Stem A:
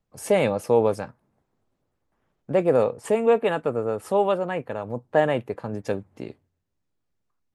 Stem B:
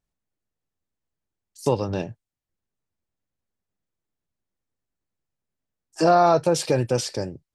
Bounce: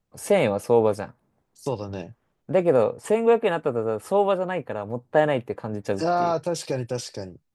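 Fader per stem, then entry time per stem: +0.5 dB, -6.0 dB; 0.00 s, 0.00 s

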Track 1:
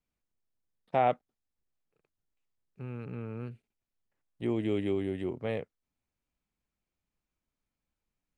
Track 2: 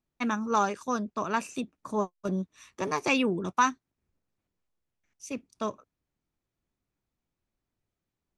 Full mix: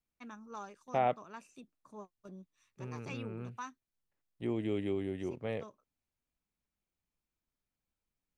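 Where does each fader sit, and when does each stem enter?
-4.0 dB, -20.0 dB; 0.00 s, 0.00 s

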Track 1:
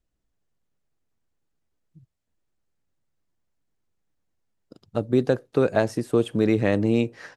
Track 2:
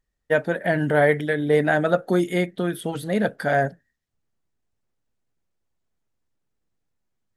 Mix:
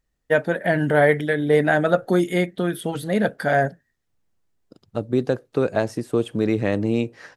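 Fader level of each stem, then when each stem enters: -0.5 dB, +1.5 dB; 0.00 s, 0.00 s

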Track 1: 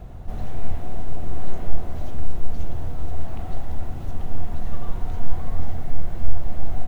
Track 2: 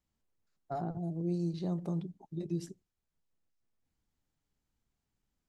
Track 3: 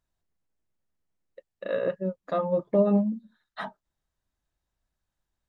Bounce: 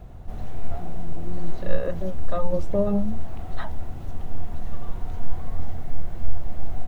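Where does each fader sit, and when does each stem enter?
-3.5 dB, -4.0 dB, -2.0 dB; 0.00 s, 0.00 s, 0.00 s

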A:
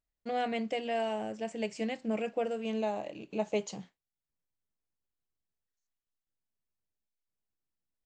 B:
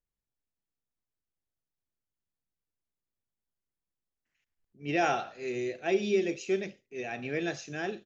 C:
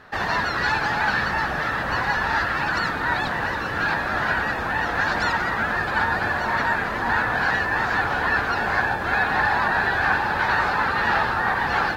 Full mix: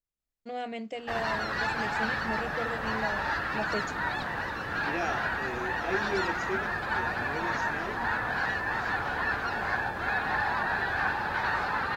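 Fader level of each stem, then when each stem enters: -3.5 dB, -5.5 dB, -8.0 dB; 0.20 s, 0.00 s, 0.95 s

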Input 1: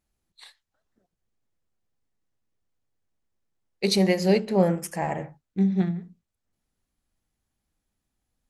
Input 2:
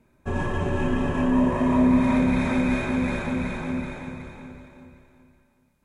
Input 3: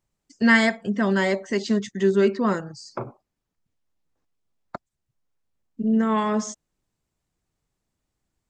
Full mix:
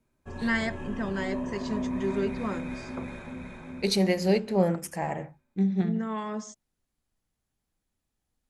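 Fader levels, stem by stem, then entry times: -3.0 dB, -13.0 dB, -10.5 dB; 0.00 s, 0.00 s, 0.00 s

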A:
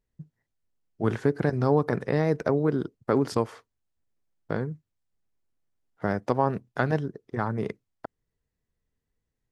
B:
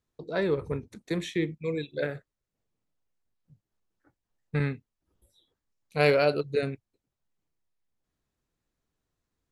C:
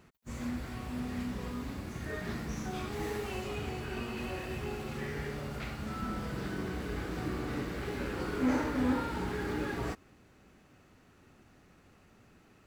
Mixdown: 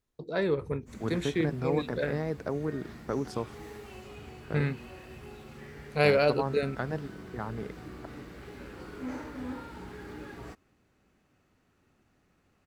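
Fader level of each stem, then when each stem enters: -8.5 dB, -1.0 dB, -8.5 dB; 0.00 s, 0.00 s, 0.60 s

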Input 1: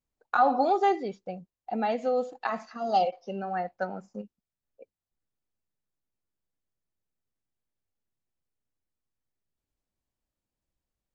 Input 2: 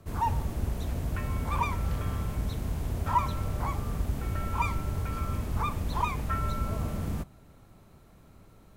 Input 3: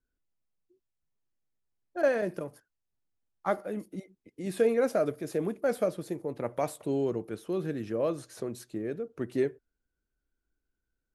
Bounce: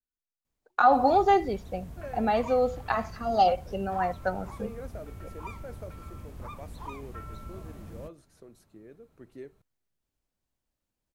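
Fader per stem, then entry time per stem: +2.5 dB, -12.0 dB, -16.0 dB; 0.45 s, 0.85 s, 0.00 s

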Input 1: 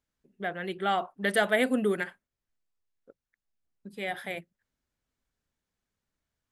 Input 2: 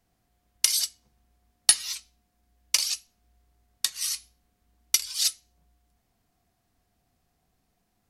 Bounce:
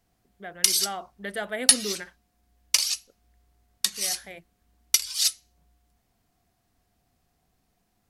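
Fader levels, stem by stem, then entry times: -7.0 dB, +1.5 dB; 0.00 s, 0.00 s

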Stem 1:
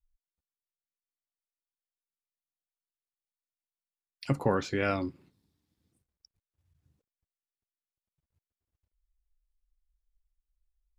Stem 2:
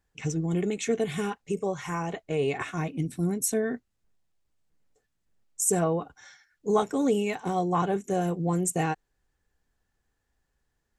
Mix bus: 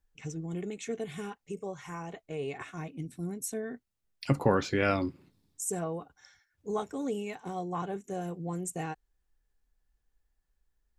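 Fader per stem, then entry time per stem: +2.0 dB, -9.0 dB; 0.00 s, 0.00 s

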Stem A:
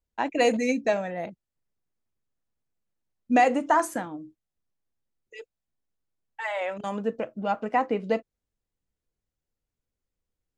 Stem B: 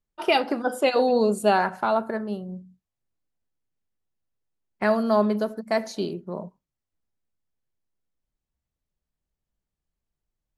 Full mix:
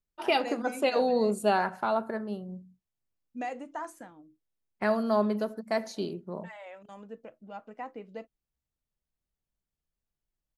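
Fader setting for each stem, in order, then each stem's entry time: -16.0 dB, -5.0 dB; 0.05 s, 0.00 s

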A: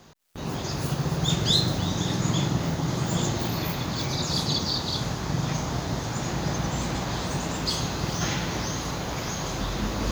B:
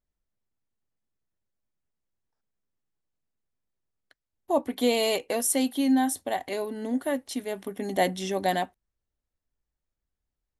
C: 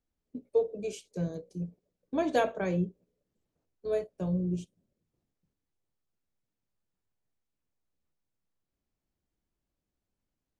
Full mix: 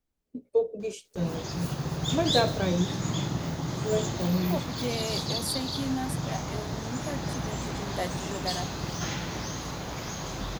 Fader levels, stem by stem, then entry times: -5.0 dB, -9.0 dB, +2.0 dB; 0.80 s, 0.00 s, 0.00 s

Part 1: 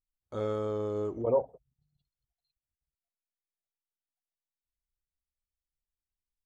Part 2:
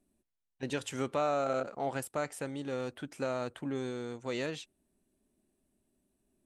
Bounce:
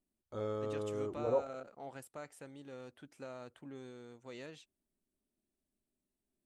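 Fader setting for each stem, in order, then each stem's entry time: -6.0 dB, -13.0 dB; 0.00 s, 0.00 s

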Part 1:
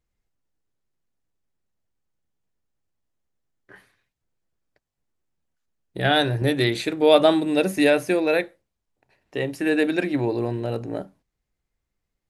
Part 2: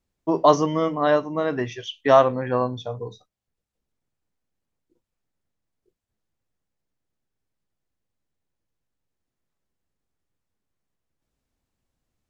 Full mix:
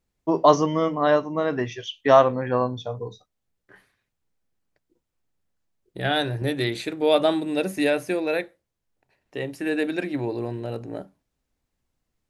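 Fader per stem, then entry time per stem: -4.0 dB, 0.0 dB; 0.00 s, 0.00 s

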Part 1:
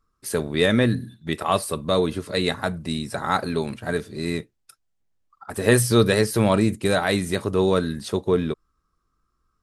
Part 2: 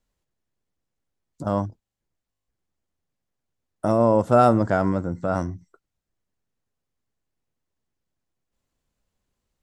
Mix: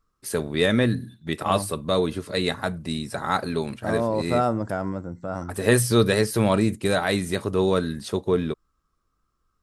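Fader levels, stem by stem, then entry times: -1.5 dB, -6.5 dB; 0.00 s, 0.00 s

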